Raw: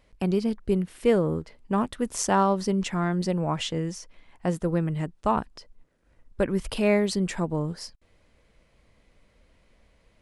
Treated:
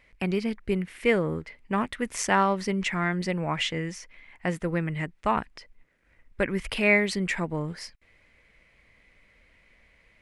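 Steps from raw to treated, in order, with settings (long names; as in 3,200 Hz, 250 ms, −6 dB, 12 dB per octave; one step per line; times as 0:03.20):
parametric band 2,100 Hz +15 dB 0.9 octaves
level −3 dB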